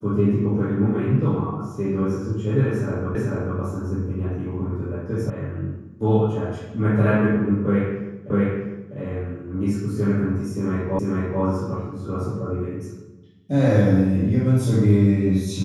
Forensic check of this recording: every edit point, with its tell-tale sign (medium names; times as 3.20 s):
3.15 s: repeat of the last 0.44 s
5.30 s: sound stops dead
8.30 s: repeat of the last 0.65 s
10.99 s: repeat of the last 0.44 s